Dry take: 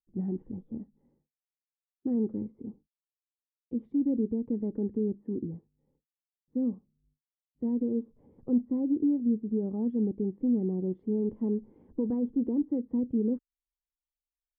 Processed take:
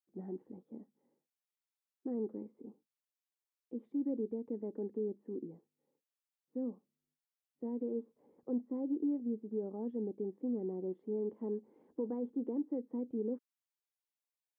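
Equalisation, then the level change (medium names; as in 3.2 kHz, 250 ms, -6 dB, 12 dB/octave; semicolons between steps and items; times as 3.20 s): high-pass 390 Hz 12 dB/octave; -1.5 dB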